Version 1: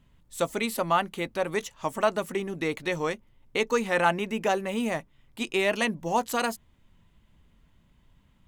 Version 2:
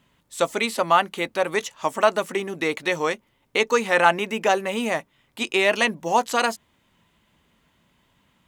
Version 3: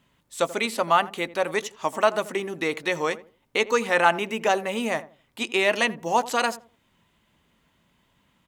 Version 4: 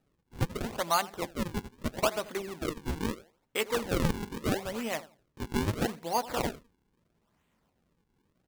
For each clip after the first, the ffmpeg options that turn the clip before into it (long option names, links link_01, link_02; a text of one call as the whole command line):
ffmpeg -i in.wav -filter_complex "[0:a]highpass=frequency=400:poles=1,acrossover=split=8600[link_01][link_02];[link_02]acompressor=threshold=-53dB:ratio=4:attack=1:release=60[link_03];[link_01][link_03]amix=inputs=2:normalize=0,volume=7dB" out.wav
ffmpeg -i in.wav -filter_complex "[0:a]asplit=2[link_01][link_02];[link_02]adelay=84,lowpass=frequency=820:poles=1,volume=-14.5dB,asplit=2[link_03][link_04];[link_04]adelay=84,lowpass=frequency=820:poles=1,volume=0.29,asplit=2[link_05][link_06];[link_06]adelay=84,lowpass=frequency=820:poles=1,volume=0.29[link_07];[link_01][link_03][link_05][link_07]amix=inputs=4:normalize=0,volume=-2dB" out.wav
ffmpeg -i in.wav -af "acrusher=samples=40:mix=1:aa=0.000001:lfo=1:lforange=64:lforate=0.77,volume=-7.5dB" out.wav